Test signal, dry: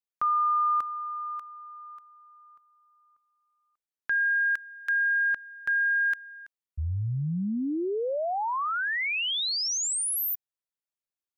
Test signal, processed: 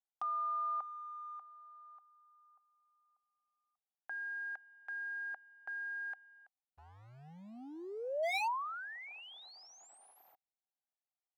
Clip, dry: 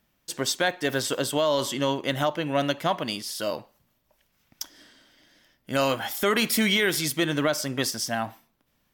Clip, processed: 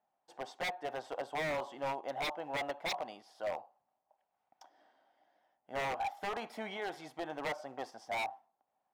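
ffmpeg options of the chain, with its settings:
ffmpeg -i in.wav -af "acrusher=bits=5:mode=log:mix=0:aa=0.000001,bandpass=frequency=770:width_type=q:width=7.9:csg=0,aeval=exprs='0.0168*(abs(mod(val(0)/0.0168+3,4)-2)-1)':channel_layout=same,volume=5.5dB" out.wav

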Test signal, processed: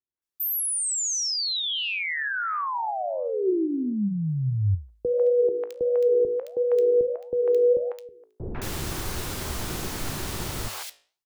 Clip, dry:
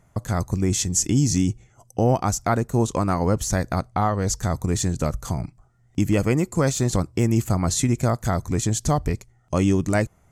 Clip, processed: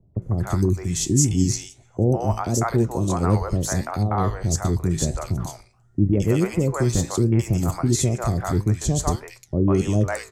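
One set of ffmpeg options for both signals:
ffmpeg -i in.wav -filter_complex "[0:a]lowshelf=frequency=93:gain=-5.5,acrossover=split=570|2200[link_01][link_02][link_03];[link_02]adelay=150[link_04];[link_03]adelay=220[link_05];[link_01][link_04][link_05]amix=inputs=3:normalize=0,flanger=delay=9.5:depth=9.2:regen=77:speed=1.5:shape=sinusoidal,acrossover=split=130[link_06][link_07];[link_06]acontrast=64[link_08];[link_07]equalizer=frequency=370:width_type=o:width=0.26:gain=7[link_09];[link_08][link_09]amix=inputs=2:normalize=0,volume=4dB" out.wav

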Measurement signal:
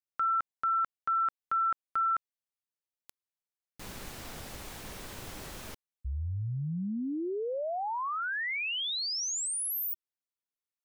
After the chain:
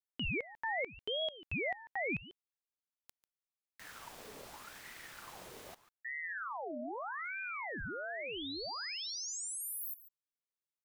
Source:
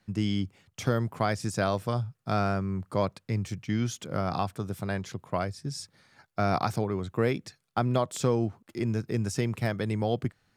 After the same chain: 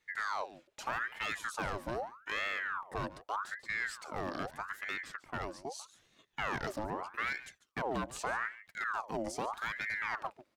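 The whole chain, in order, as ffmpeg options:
ffmpeg -i in.wav -af "volume=22.5dB,asoftclip=hard,volume=-22.5dB,aecho=1:1:144:0.15,aeval=exprs='val(0)*sin(2*PI*1200*n/s+1200*0.65/0.81*sin(2*PI*0.81*n/s))':channel_layout=same,volume=-5dB" out.wav

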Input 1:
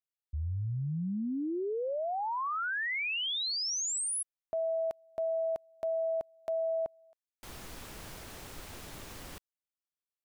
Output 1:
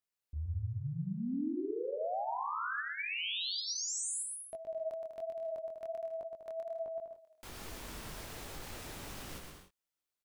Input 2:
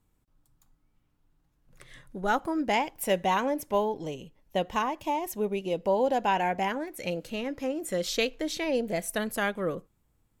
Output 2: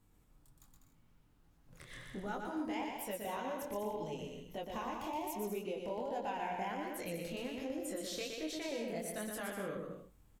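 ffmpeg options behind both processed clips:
ffmpeg -i in.wav -af "acompressor=threshold=-41dB:ratio=4:attack=0.14:release=205:knee=6:detection=rms,flanger=delay=19:depth=7.6:speed=1.3,aecho=1:1:120|198|248.7|281.7|303.1:0.631|0.398|0.251|0.158|0.1,volume=5dB" out.wav

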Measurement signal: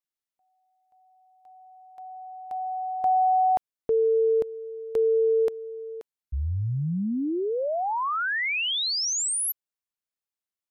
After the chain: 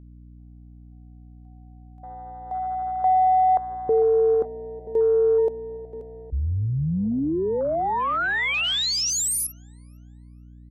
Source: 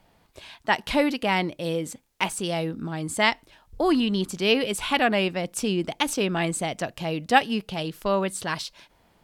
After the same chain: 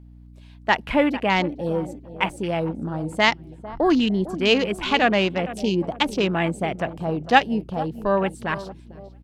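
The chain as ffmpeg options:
ffmpeg -i in.wav -filter_complex "[0:a]asplit=2[link_01][link_02];[link_02]adelay=450,lowpass=frequency=2500:poles=1,volume=-14dB,asplit=2[link_03][link_04];[link_04]adelay=450,lowpass=frequency=2500:poles=1,volume=0.48,asplit=2[link_05][link_06];[link_06]adelay=450,lowpass=frequency=2500:poles=1,volume=0.48,asplit=2[link_07][link_08];[link_08]adelay=450,lowpass=frequency=2500:poles=1,volume=0.48,asplit=2[link_09][link_10];[link_10]adelay=450,lowpass=frequency=2500:poles=1,volume=0.48[link_11];[link_01][link_03][link_05][link_07][link_09][link_11]amix=inputs=6:normalize=0,afwtdn=0.02,aeval=exprs='val(0)+0.00447*(sin(2*PI*60*n/s)+sin(2*PI*2*60*n/s)/2+sin(2*PI*3*60*n/s)/3+sin(2*PI*4*60*n/s)/4+sin(2*PI*5*60*n/s)/5)':channel_layout=same,volume=3dB" out.wav

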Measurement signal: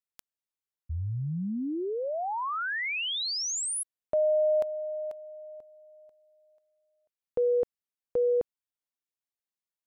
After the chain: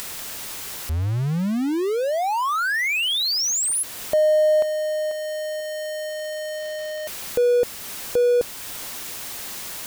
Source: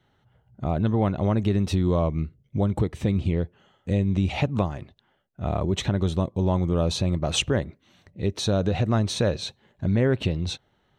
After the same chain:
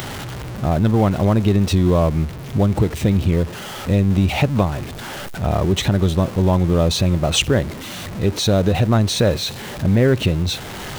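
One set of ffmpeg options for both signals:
ffmpeg -i in.wav -filter_complex "[0:a]aeval=exprs='val(0)+0.5*0.0251*sgn(val(0))':channel_layout=same,asplit=2[link_01][link_02];[link_02]acompressor=mode=upward:threshold=-30dB:ratio=2.5:attack=4.3:release=458:knee=2.83:detection=peak,volume=-0.5dB[link_03];[link_01][link_03]amix=inputs=2:normalize=0" out.wav

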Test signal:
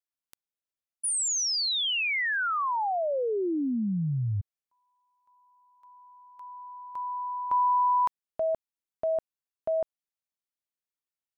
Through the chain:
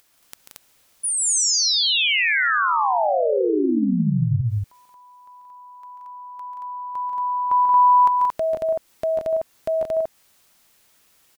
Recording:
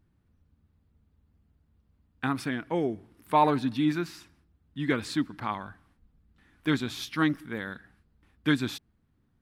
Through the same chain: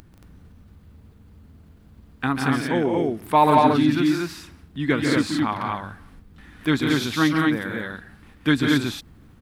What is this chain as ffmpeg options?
ffmpeg -i in.wav -filter_complex "[0:a]asplit=2[link_01][link_02];[link_02]acompressor=mode=upward:threshold=-36dB:ratio=2.5:attack=6.9:release=57:knee=2.83:detection=peak,volume=-2dB[link_03];[link_01][link_03]amix=inputs=2:normalize=0,aecho=1:1:139.9|177.8|227.4:0.447|0.501|0.794" out.wav

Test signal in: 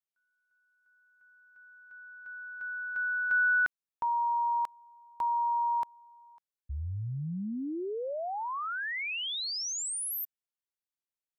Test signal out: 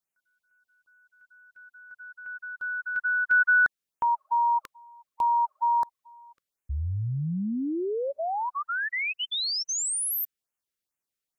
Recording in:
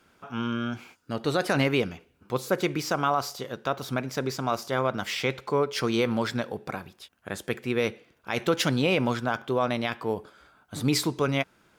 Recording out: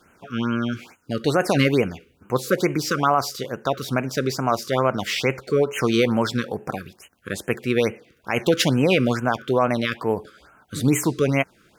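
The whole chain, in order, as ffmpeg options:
ffmpeg -i in.wav -af "afftfilt=real='re*(1-between(b*sr/1024,740*pow(4500/740,0.5+0.5*sin(2*PI*2.3*pts/sr))/1.41,740*pow(4500/740,0.5+0.5*sin(2*PI*2.3*pts/sr))*1.41))':imag='im*(1-between(b*sr/1024,740*pow(4500/740,0.5+0.5*sin(2*PI*2.3*pts/sr))/1.41,740*pow(4500/740,0.5+0.5*sin(2*PI*2.3*pts/sr))*1.41))':win_size=1024:overlap=0.75,volume=6dB" out.wav

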